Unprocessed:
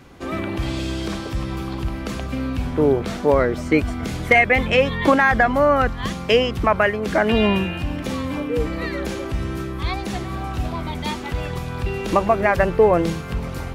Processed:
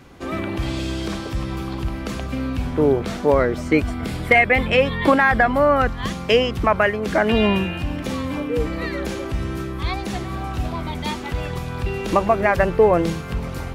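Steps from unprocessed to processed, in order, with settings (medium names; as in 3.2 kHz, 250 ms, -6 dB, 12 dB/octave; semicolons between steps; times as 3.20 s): 3.91–5.80 s: peaking EQ 6.3 kHz -9 dB 0.23 oct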